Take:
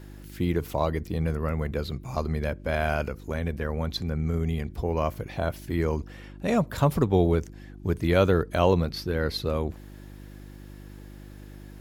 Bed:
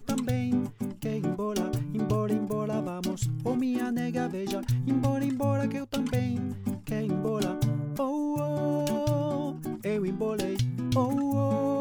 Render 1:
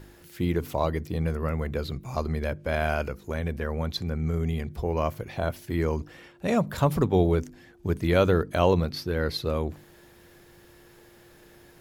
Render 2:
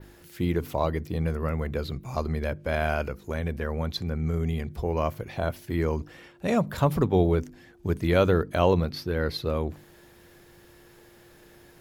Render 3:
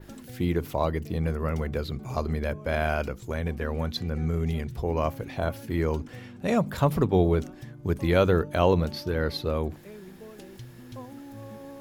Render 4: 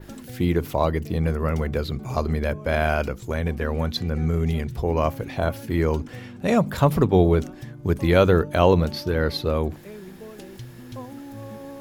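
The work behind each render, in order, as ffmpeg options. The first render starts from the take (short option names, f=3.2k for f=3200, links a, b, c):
-af "bandreject=f=50:t=h:w=4,bandreject=f=100:t=h:w=4,bandreject=f=150:t=h:w=4,bandreject=f=200:t=h:w=4,bandreject=f=250:t=h:w=4,bandreject=f=300:t=h:w=4"
-af "adynamicequalizer=threshold=0.00251:dfrequency=7800:dqfactor=0.78:tfrequency=7800:tqfactor=0.78:attack=5:release=100:ratio=0.375:range=2.5:mode=cutabove:tftype=bell"
-filter_complex "[1:a]volume=-16dB[a];[0:a][a]amix=inputs=2:normalize=0"
-af "volume=4.5dB"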